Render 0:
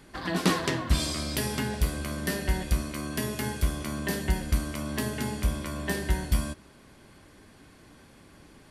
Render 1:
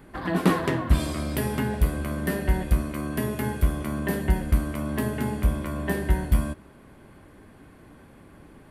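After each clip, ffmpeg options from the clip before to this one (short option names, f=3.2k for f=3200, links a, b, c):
-af "equalizer=f=5.5k:t=o:w=1.8:g=-15,volume=4.5dB"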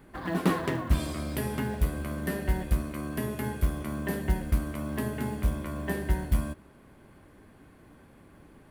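-af "acrusher=bits=7:mode=log:mix=0:aa=0.000001,volume=-4.5dB"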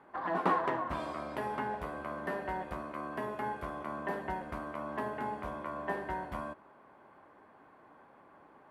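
-af "bandpass=f=920:t=q:w=1.7:csg=0,volume=5.5dB"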